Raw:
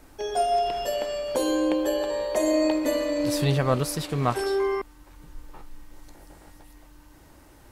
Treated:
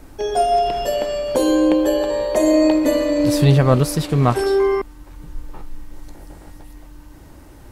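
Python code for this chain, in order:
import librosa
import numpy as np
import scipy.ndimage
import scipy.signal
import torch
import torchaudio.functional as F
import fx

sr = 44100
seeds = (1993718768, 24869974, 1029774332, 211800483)

y = fx.low_shelf(x, sr, hz=440.0, db=7.0)
y = F.gain(torch.from_numpy(y), 4.5).numpy()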